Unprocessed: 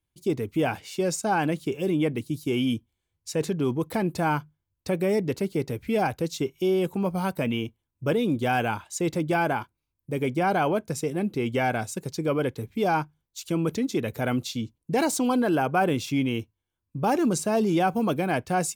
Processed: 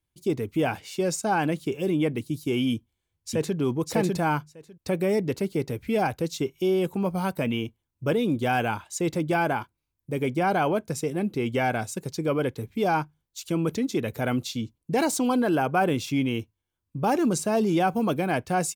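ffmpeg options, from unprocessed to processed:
-filter_complex "[0:a]asplit=2[s0][s1];[s1]afade=t=in:st=2.73:d=0.01,afade=t=out:st=3.57:d=0.01,aecho=0:1:600|1200:0.891251|0.0891251[s2];[s0][s2]amix=inputs=2:normalize=0"

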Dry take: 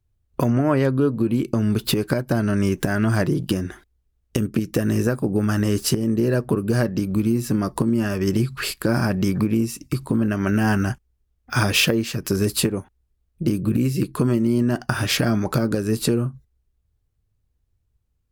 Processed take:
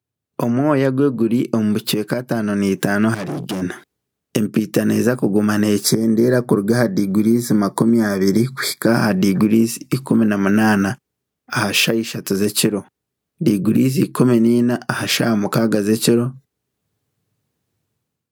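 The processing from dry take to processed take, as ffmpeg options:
-filter_complex "[0:a]asettb=1/sr,asplit=3[s0][s1][s2];[s0]atrim=end=3.144[s3];[s1]atrim=start=3.14:end=3.62,asetpts=PTS-STARTPTS,afade=t=in:d=0.004:c=qsin,afade=t=out:st=0.476:d=0.004:c=qsin,aeval=exprs='(tanh(25.1*val(0)+0.45)-tanh(0.45))/25.1':c=same[s4];[s2]atrim=start=3.616[s5];[s3][s4]acrossfade=d=0.004:c1=hsin:c2=qsin[s6];[s6][s5]acrossfade=d=0.004:c1=qsin:c2=hsin,asettb=1/sr,asplit=3[s7][s8][s9];[s7]atrim=end=5.844[s10];[s8]atrim=start=5.84:end=8.87,asetpts=PTS-STARTPTS,afade=t=in:d=0.004:c=qsin,afade=t=out:st=3.026:d=0.004:c=qsin,asuperstop=centerf=2800:order=20:qfactor=3.4[s11];[s9]atrim=start=8.866[s12];[s10][s11]acrossfade=d=0.004:c1=hsin:c2=qsin[s13];[s13][s12]acrossfade=d=0.004:c1=qsin:c2=hsin,highpass=f=140:w=0.5412,highpass=f=140:w=1.3066,dynaudnorm=f=170:g=5:m=3.76,volume=0.891"

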